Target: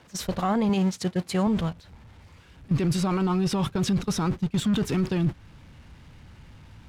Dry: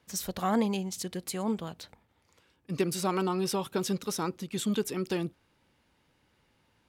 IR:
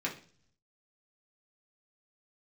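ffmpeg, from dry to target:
-filter_complex "[0:a]aeval=exprs='val(0)+0.5*0.0112*sgn(val(0))':c=same,asettb=1/sr,asplit=3[a][b][c];[a]atrim=end=0.694[d];[b]atrim=start=0.69:end=1.47,asetpts=PTS-STARTPTS,afade=t=in:d=0.004:c=qsin,afade=t=out:st=0.776:d=0.004:c=qsin,highpass=110[e];[c]atrim=start=1.466[f];[d][e]acrossfade=d=0.004:c1=hsin:c2=qsin[g];[g][f]acrossfade=d=0.004:c1=qsin:c2=hsin,agate=range=-22dB:threshold=-33dB:ratio=16:detection=peak,asubboost=boost=5.5:cutoff=170,asplit=2[h][i];[i]acompressor=threshold=-35dB:ratio=6,volume=0dB[j];[h][j]amix=inputs=2:normalize=0,alimiter=limit=-23.5dB:level=0:latency=1:release=18,aemphasis=mode=reproduction:type=50fm,asettb=1/sr,asplit=3[k][l][m];[k]atrim=end=4.434[n];[l]atrim=start=4.43:end=4.96,asetpts=PTS-STARTPTS,afade=t=in:d=0.004:c=qsin,afade=t=out:st=0.526:d=0.004:c=qsin,aeval=exprs='0.0708*(cos(1*acos(clip(val(0)/0.0708,-1,1)))-cos(1*PI/2))+0.002*(cos(5*acos(clip(val(0)/0.0708,-1,1)))-cos(5*PI/2))+0.00501*(cos(7*acos(clip(val(0)/0.0708,-1,1)))-cos(7*PI/2))':c=same[o];[m]atrim=start=4.956[p];[n][o]acrossfade=d=0.004:c1=hsin:c2=qsin[q];[q][p]acrossfade=d=0.004:c1=qsin:c2=hsin,volume=6.5dB"

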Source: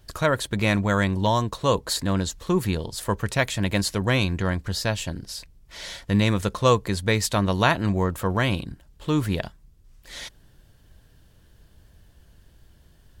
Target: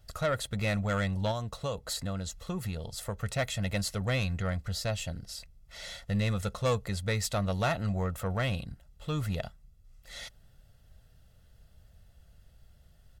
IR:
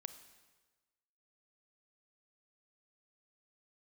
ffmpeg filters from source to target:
-filter_complex "[0:a]aecho=1:1:1.5:0.62,asettb=1/sr,asplit=3[a][b][c];[a]atrim=end=1.314[d];[b]atrim=start=1.31:end=3.19,asetpts=PTS-STARTPTS,afade=t=in:d=0.004:c=qsin,afade=t=out:st=1.876:d=0.004:c=qsin,acompressor=threshold=-22dB:ratio=6[e];[c]atrim=start=3.186[f];[d][e]acrossfade=d=0.004:c1=hsin:c2=qsin[g];[g][f]acrossfade=d=0.004:c1=qsin:c2=hsin,asoftclip=type=tanh:threshold=-14dB,volume=-7.5dB"

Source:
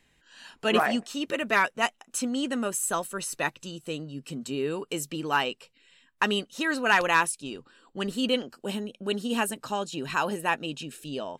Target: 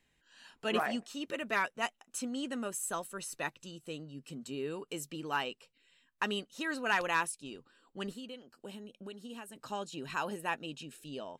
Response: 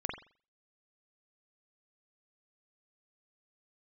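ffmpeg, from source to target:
-filter_complex "[0:a]asplit=3[a][b][c];[a]afade=t=out:st=8.12:d=0.02[d];[b]acompressor=threshold=-34dB:ratio=10,afade=t=in:st=8.12:d=0.02,afade=t=out:st=9.54:d=0.02[e];[c]afade=t=in:st=9.54:d=0.02[f];[d][e][f]amix=inputs=3:normalize=0,volume=-8.5dB"

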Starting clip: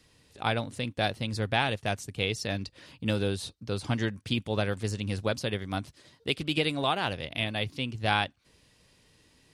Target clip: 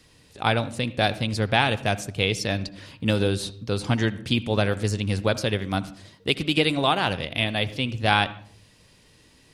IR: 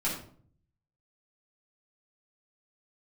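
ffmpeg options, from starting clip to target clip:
-filter_complex "[0:a]asplit=2[a][b];[1:a]atrim=start_sample=2205,lowpass=4k,adelay=62[c];[b][c]afir=irnorm=-1:irlink=0,volume=-22.5dB[d];[a][d]amix=inputs=2:normalize=0,volume=6dB"

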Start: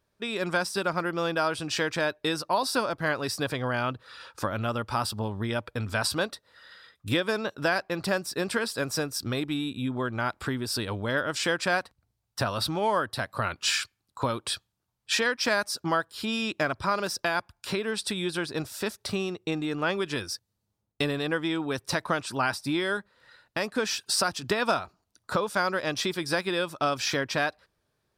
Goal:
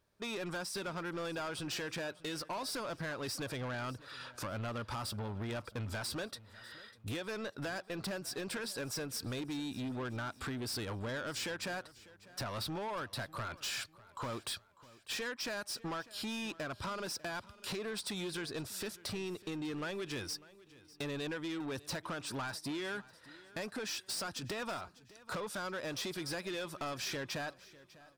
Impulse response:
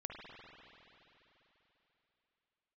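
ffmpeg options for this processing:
-filter_complex "[0:a]acompressor=threshold=-29dB:ratio=6,asoftclip=type=tanh:threshold=-33.5dB,asplit=2[a][b];[b]aecho=0:1:598|1196|1794:0.1|0.04|0.016[c];[a][c]amix=inputs=2:normalize=0,volume=-1.5dB"

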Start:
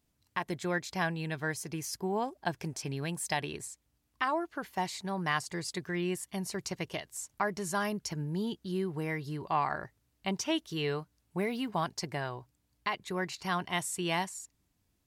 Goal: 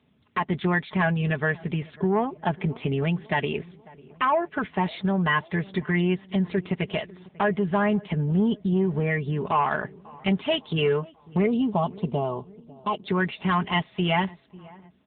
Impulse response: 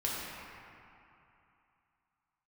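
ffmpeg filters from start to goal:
-filter_complex "[0:a]highpass=f=61:p=1,asettb=1/sr,asplit=3[a][b][c];[a]atrim=end=6.344[d];[b]atrim=start=6.34:end=7.21,asetpts=PTS-STARTPTS,afade=t=in:d=0.004:c=qsin,afade=t=out:st=0.866:d=0.004:c=qsin,agate=range=-41dB:threshold=-54dB:ratio=16:detection=peak[e];[c]atrim=start=7.206[f];[d][e]acrossfade=d=0.004:c1=hsin:c2=qsin[g];[g][f]acrossfade=d=0.004:c1=qsin:c2=hsin,lowshelf=f=130:g=4,aecho=1:1:4.7:0.65,asplit=2[h][i];[i]acompressor=threshold=-39dB:ratio=20,volume=1.5dB[j];[h][j]amix=inputs=2:normalize=0,asoftclip=type=tanh:threshold=-22dB,asettb=1/sr,asplit=3[k][l][m];[k]atrim=end=11.464[n];[l]atrim=start=11.46:end=13.08,asetpts=PTS-STARTPTS,afade=t=in:d=0.004:c=qsin,afade=t=out:st=1.616:d=0.004:c=qsin,asuperstop=centerf=1800:order=4:qfactor=0.98[o];[m]atrim=start=13.076[p];[n][o]acrossfade=d=0.004:c1=hsin:c2=qsin[q];[q][p]acrossfade=d=0.004:c1=qsin:c2=hsin,asplit=2[r][s];[s]adelay=546,lowpass=f=1.4k:p=1,volume=-22dB,asplit=2[t][u];[u]adelay=546,lowpass=f=1.4k:p=1,volume=0.54,asplit=2[v][w];[w]adelay=546,lowpass=f=1.4k:p=1,volume=0.54,asplit=2[x][y];[y]adelay=546,lowpass=f=1.4k:p=1,volume=0.54[z];[t][v][x][z]amix=inputs=4:normalize=0[aa];[r][aa]amix=inputs=2:normalize=0,volume=7.5dB" -ar 8000 -c:a libopencore_amrnb -b:a 7950

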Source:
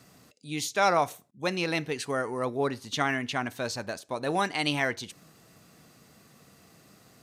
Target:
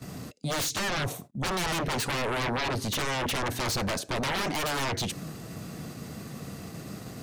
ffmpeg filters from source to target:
-filter_complex "[0:a]acrossover=split=340[a][b];[b]acompressor=threshold=-31dB:ratio=8[c];[a][c]amix=inputs=2:normalize=0,lowshelf=f=430:g=9.5,agate=range=-13dB:threshold=-52dB:ratio=16:detection=peak,aeval=exprs='0.119*sin(PI/2*5.62*val(0)/0.119)':c=same,volume=-7.5dB"

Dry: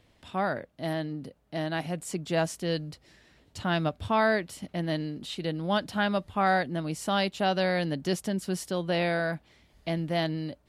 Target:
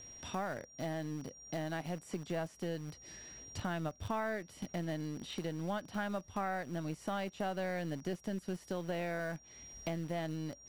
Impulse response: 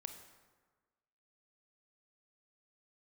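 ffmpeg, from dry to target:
-filter_complex "[0:a]acrossover=split=2700[a][b];[b]acompressor=threshold=-50dB:ratio=4:attack=1:release=60[c];[a][c]amix=inputs=2:normalize=0,asplit=2[d][e];[e]acrusher=bits=3:dc=4:mix=0:aa=0.000001,volume=-8dB[f];[d][f]amix=inputs=2:normalize=0,aeval=exprs='val(0)+0.00224*sin(2*PI*5700*n/s)':c=same,acompressor=threshold=-43dB:ratio=3,volume=3dB"

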